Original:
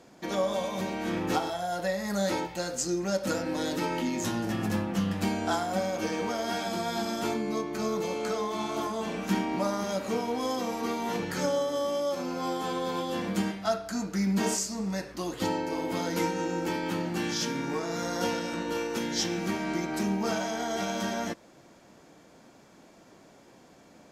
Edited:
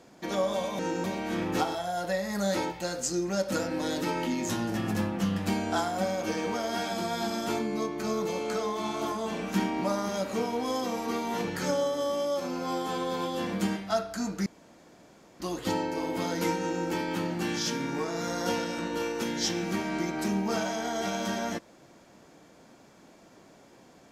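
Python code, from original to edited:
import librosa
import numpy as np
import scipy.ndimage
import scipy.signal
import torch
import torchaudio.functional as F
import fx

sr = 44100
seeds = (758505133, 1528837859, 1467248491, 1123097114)

y = fx.edit(x, sr, fx.room_tone_fill(start_s=14.21, length_s=0.94),
    fx.duplicate(start_s=16.33, length_s=0.25, to_s=0.79), tone=tone)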